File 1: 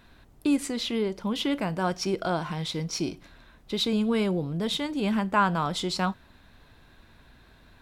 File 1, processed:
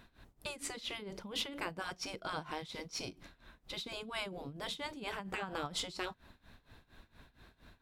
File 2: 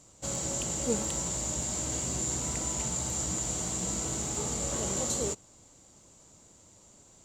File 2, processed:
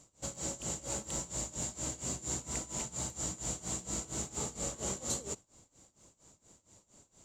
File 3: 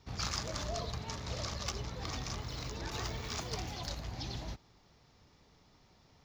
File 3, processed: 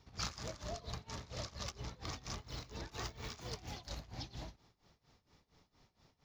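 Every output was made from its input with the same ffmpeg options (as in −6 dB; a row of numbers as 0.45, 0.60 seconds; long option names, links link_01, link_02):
-af "tremolo=f=4.3:d=0.89,afftfilt=real='re*lt(hypot(re,im),0.126)':imag='im*lt(hypot(re,im),0.126)':win_size=1024:overlap=0.75,volume=-2dB"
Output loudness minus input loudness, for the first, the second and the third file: −13.5, −6.5, −6.0 LU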